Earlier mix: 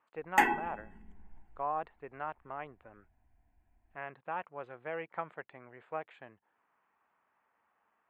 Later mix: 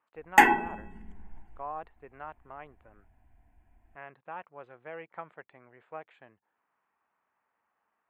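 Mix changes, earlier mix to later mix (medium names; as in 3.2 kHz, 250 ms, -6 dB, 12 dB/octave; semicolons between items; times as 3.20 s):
speech -3.5 dB; background +7.5 dB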